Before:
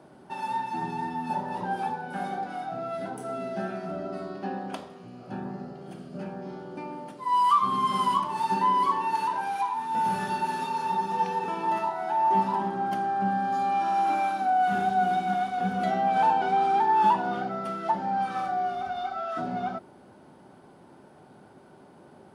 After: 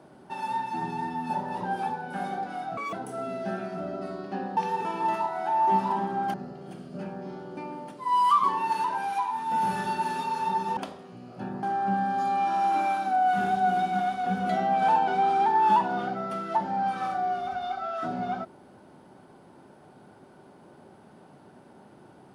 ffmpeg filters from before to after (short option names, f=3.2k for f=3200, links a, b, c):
-filter_complex "[0:a]asplit=8[a][b][c][d][e][f][g][h];[a]atrim=end=2.774[i];[b]atrim=start=2.77:end=3.04,asetpts=PTS-STARTPTS,asetrate=74970,aresample=44100,atrim=end_sample=7004,asetpts=PTS-STARTPTS[j];[c]atrim=start=3.036:end=4.682[k];[d]atrim=start=11.198:end=12.972[l];[e]atrim=start=5.538:end=7.642[m];[f]atrim=start=8.868:end=11.202[n];[g]atrim=start=4.678:end=5.542[o];[h]atrim=start=12.968[p];[i][j]acrossfade=d=0.004:c1=hsin:c2=hsin[q];[q][k]acrossfade=d=0.004:c1=hsin:c2=hsin[r];[r][l]acrossfade=d=0.004:c1=hsin:c2=hsin[s];[s][m]acrossfade=d=0.004:c1=hsin:c2=hsin[t];[t][n]acrossfade=d=0.004:c1=hsin:c2=hsin[u];[u][o]acrossfade=d=0.004:c1=hsin:c2=hsin[v];[v][p]acrossfade=d=0.004:c1=hsin:c2=hsin"